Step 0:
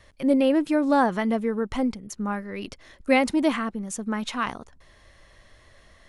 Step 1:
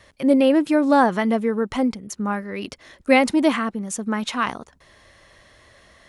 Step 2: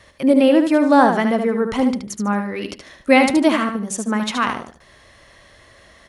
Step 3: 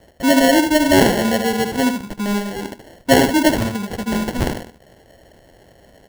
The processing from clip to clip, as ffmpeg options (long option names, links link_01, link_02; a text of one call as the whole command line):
ffmpeg -i in.wav -af "highpass=frequency=110:poles=1,volume=4.5dB" out.wav
ffmpeg -i in.wav -af "aecho=1:1:74|148|222:0.473|0.118|0.0296,volume=2.5dB" out.wav
ffmpeg -i in.wav -af "acrusher=samples=36:mix=1:aa=0.000001" out.wav